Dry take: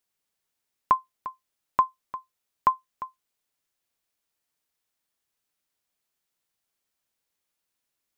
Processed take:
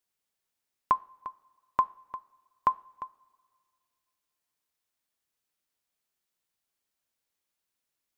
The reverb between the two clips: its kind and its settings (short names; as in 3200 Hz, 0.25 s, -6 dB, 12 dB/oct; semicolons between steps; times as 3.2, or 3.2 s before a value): two-slope reverb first 0.41 s, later 2.3 s, from -18 dB, DRR 17.5 dB; gain -3 dB